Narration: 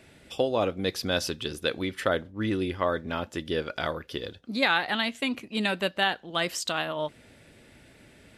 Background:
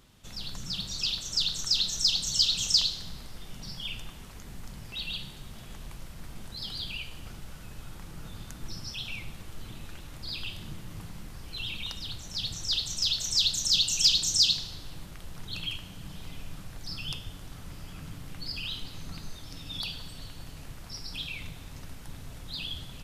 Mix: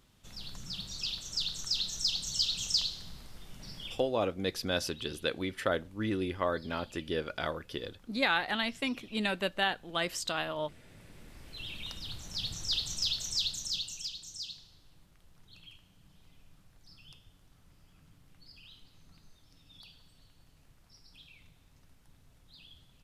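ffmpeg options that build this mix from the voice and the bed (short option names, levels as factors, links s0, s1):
-filter_complex "[0:a]adelay=3600,volume=0.596[s0];[1:a]volume=2.82,afade=t=out:st=3.83:d=0.26:silence=0.251189,afade=t=in:st=10.88:d=1.35:silence=0.177828,afade=t=out:st=12.9:d=1.2:silence=0.158489[s1];[s0][s1]amix=inputs=2:normalize=0"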